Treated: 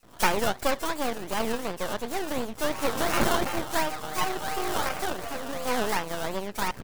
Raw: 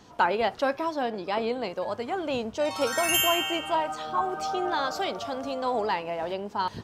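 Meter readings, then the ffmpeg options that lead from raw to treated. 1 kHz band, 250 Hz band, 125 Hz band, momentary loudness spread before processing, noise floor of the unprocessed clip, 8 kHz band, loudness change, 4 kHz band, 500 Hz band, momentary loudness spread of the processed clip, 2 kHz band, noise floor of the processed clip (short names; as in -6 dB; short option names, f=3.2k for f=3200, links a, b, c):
-2.0 dB, +1.0 dB, +6.0 dB, 9 LU, -47 dBFS, 0.0 dB, -1.5 dB, -3.5 dB, -2.0 dB, 7 LU, +0.5 dB, -46 dBFS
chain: -filter_complex "[0:a]acrusher=samples=16:mix=1:aa=0.000001:lfo=1:lforange=9.6:lforate=2.8,acrossover=split=5000[a][b];[a]adelay=30[c];[c][b]amix=inputs=2:normalize=0,aeval=exprs='max(val(0),0)':c=same,volume=3.5dB"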